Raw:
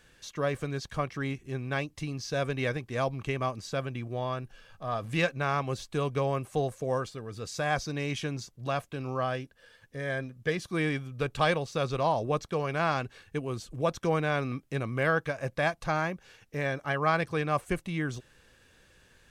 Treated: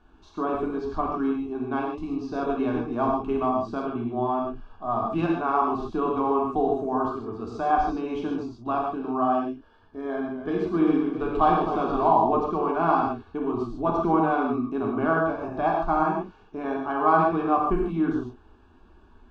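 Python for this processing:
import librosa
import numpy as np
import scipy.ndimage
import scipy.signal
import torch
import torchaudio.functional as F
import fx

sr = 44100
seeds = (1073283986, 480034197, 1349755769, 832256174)

y = scipy.signal.sosfilt(scipy.signal.butter(2, 1400.0, 'lowpass', fs=sr, output='sos'), x)
y = fx.fixed_phaser(y, sr, hz=520.0, stages=6)
y = fx.rev_gated(y, sr, seeds[0], gate_ms=170, shape='flat', drr_db=-2.0)
y = fx.echo_warbled(y, sr, ms=261, feedback_pct=55, rate_hz=2.8, cents=84, wet_db=-11.0, at=(10.01, 12.16))
y = y * 10.0 ** (7.5 / 20.0)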